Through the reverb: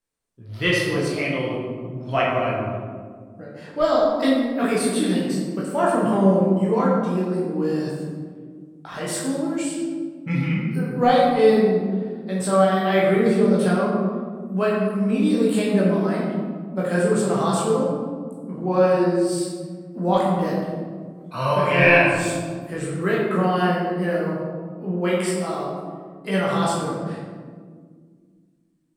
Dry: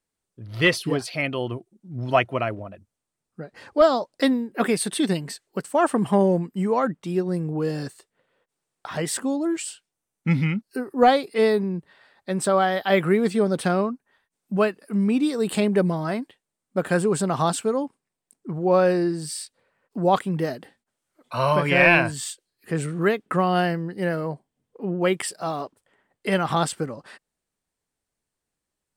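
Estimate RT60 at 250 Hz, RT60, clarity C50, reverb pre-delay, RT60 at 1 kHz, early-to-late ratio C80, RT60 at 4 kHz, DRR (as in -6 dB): 2.9 s, 1.8 s, 0.0 dB, 16 ms, 1.5 s, 2.0 dB, 0.85 s, -6.0 dB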